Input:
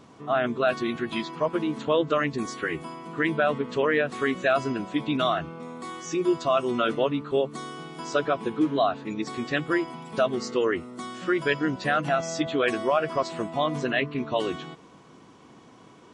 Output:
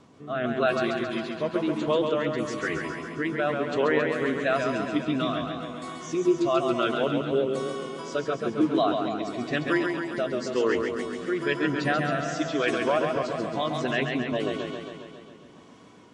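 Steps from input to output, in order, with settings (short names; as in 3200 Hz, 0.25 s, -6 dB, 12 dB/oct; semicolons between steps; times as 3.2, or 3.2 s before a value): rotary speaker horn 1 Hz; warbling echo 0.136 s, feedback 67%, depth 68 cents, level -5 dB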